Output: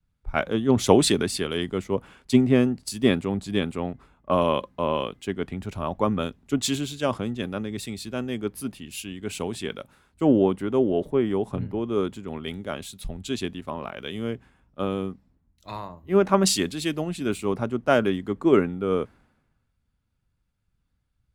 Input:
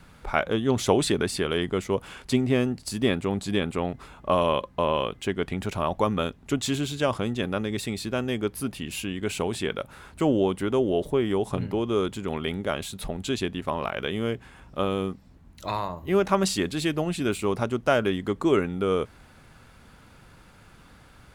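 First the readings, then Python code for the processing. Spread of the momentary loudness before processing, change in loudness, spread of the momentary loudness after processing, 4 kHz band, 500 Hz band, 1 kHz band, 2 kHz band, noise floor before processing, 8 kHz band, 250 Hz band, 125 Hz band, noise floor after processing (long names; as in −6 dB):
8 LU, +1.5 dB, 14 LU, +0.5 dB, +1.0 dB, −0.5 dB, −1.5 dB, −53 dBFS, +3.0 dB, +2.5 dB, 0.0 dB, −73 dBFS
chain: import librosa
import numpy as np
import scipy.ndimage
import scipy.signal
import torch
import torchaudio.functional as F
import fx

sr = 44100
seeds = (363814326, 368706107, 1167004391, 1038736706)

y = fx.peak_eq(x, sr, hz=240.0, db=4.5, octaves=1.1)
y = fx.band_widen(y, sr, depth_pct=100)
y = y * 10.0 ** (-2.0 / 20.0)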